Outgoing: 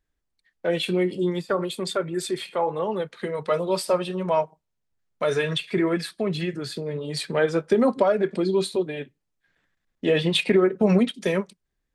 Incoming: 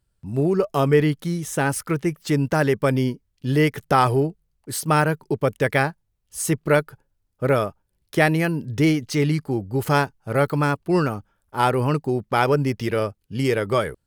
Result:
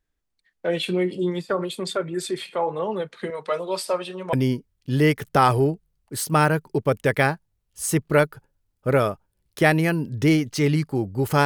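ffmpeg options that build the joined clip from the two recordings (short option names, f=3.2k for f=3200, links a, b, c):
-filter_complex "[0:a]asettb=1/sr,asplit=3[a][b][c];[a]atrim=end=3.304[d];[b]atrim=start=3.3:end=4.33,asetpts=PTS-STARTPTS,afade=t=in:d=0.004:c=qsin,afade=t=out:st=1.026:d=0.004:c=qsin,highpass=f=470:p=1[e];[c]atrim=start=4.326[f];[d][e]acrossfade=d=0.004:c1=hsin:c2=qsin[g];[g][f]acrossfade=d=0.004:c1=qsin:c2=hsin,apad=whole_dur=11.45,atrim=end=11.45,atrim=end=4.332[h];[1:a]atrim=start=2.888:end=10.01[i];[h][i]acrossfade=d=0.004:c1=hsin:c2=hsin"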